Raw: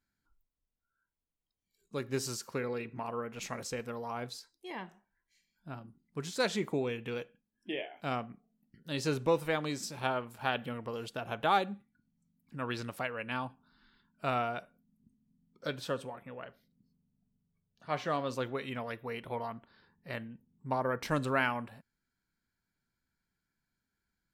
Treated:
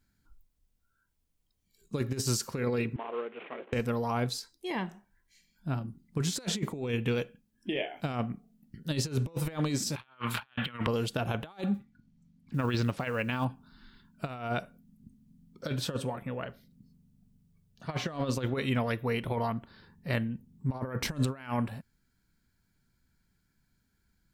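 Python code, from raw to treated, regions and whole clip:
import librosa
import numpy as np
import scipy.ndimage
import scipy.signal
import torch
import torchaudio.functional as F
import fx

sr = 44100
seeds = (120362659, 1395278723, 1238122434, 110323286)

y = fx.chain(x, sr, fx.cvsd(bps=16000),
    fx.ladder_highpass(hz=310.0, resonance_pct=40), at=(2.96, 3.73))
y = fx.chain(y, sr, fx.band_shelf(hz=2000.0, db=15.0, octaves=2.4),
    fx.band_squash(depth_pct=70), at=(9.96, 10.87))
y = fx.chain(y, sr, fx.lowpass(hz=5200.0, slope=12),
    fx.quant_float(bits=4), at=(11.74, 13.45))
y = fx.high_shelf(y, sr, hz=2600.0, db=5.0)
y = fx.over_compress(y, sr, threshold_db=-36.0, ratio=-0.5)
y = fx.low_shelf(y, sr, hz=280.0, db=11.5)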